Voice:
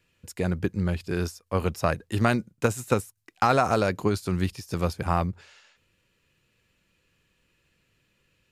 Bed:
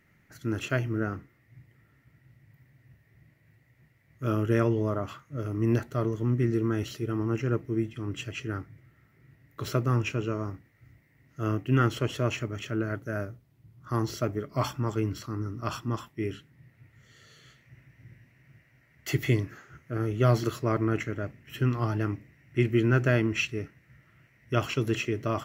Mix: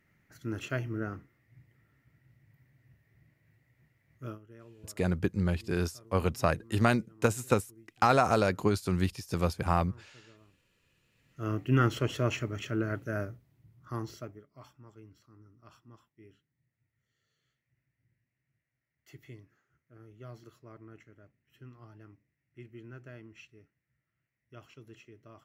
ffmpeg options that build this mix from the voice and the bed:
-filter_complex "[0:a]adelay=4600,volume=0.75[s0];[1:a]volume=11.9,afade=t=out:st=4.15:d=0.24:silence=0.0707946,afade=t=in:st=11.02:d=0.67:silence=0.0446684,afade=t=out:st=13.29:d=1.17:silence=0.0707946[s1];[s0][s1]amix=inputs=2:normalize=0"

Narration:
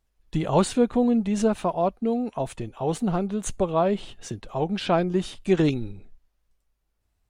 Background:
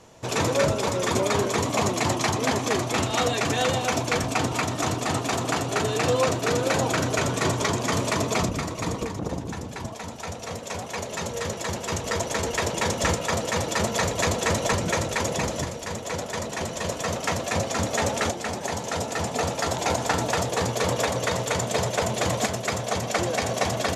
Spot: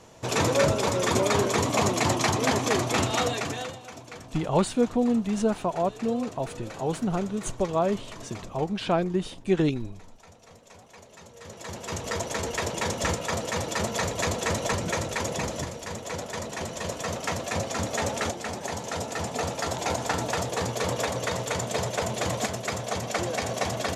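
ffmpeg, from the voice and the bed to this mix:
-filter_complex "[0:a]adelay=4000,volume=0.75[s0];[1:a]volume=5.31,afade=t=out:st=3.04:d=0.73:silence=0.125893,afade=t=in:st=11.38:d=0.66:silence=0.188365[s1];[s0][s1]amix=inputs=2:normalize=0"

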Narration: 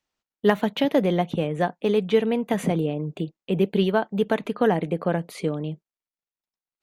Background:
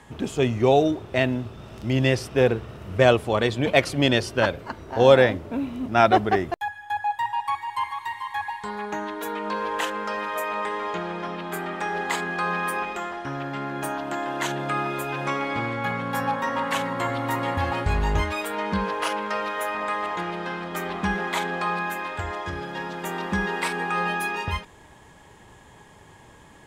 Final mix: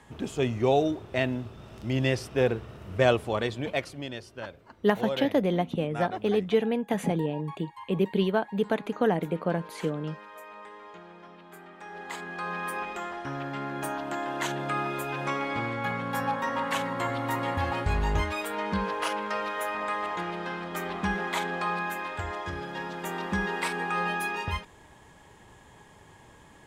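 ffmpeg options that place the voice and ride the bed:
-filter_complex "[0:a]adelay=4400,volume=0.631[s0];[1:a]volume=2.82,afade=t=out:st=3.25:d=0.81:silence=0.237137,afade=t=in:st=11.77:d=1.42:silence=0.199526[s1];[s0][s1]amix=inputs=2:normalize=0"

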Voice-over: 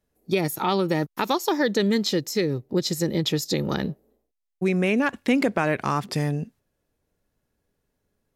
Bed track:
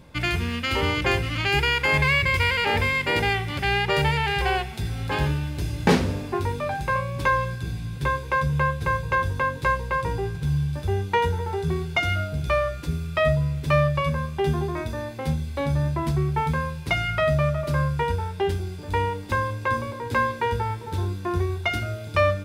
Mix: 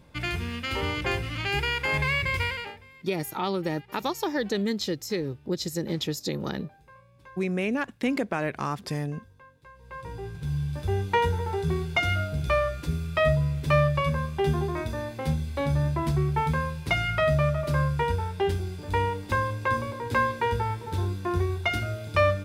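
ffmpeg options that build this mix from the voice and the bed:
-filter_complex "[0:a]adelay=2750,volume=0.531[s0];[1:a]volume=11.9,afade=t=out:st=2.41:d=0.36:silence=0.0707946,afade=t=in:st=9.74:d=1.29:silence=0.0446684[s1];[s0][s1]amix=inputs=2:normalize=0"

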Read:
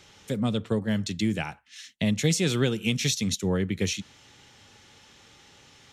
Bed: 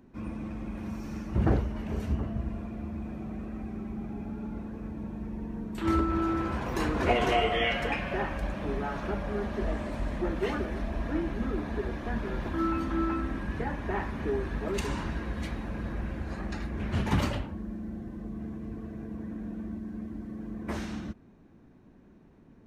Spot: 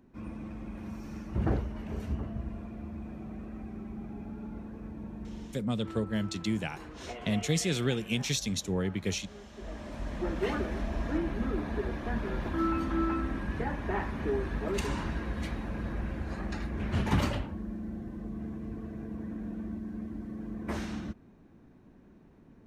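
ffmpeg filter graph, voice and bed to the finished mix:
-filter_complex "[0:a]adelay=5250,volume=0.562[s0];[1:a]volume=4.22,afade=t=out:st=5.33:d=0.37:silence=0.223872,afade=t=in:st=9.51:d=0.98:silence=0.149624[s1];[s0][s1]amix=inputs=2:normalize=0"

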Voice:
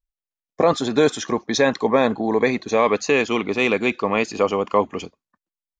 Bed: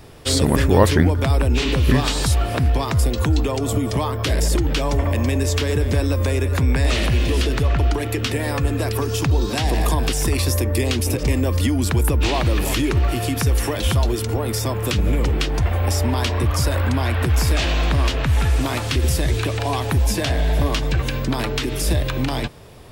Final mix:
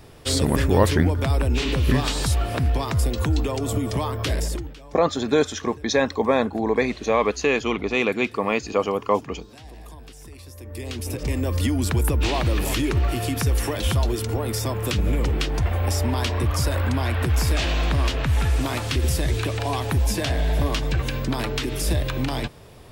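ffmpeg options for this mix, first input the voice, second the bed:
-filter_complex "[0:a]adelay=4350,volume=0.75[s0];[1:a]volume=6.68,afade=t=out:st=4.29:d=0.46:silence=0.105925,afade=t=in:st=10.56:d=1.1:silence=0.1[s1];[s0][s1]amix=inputs=2:normalize=0"

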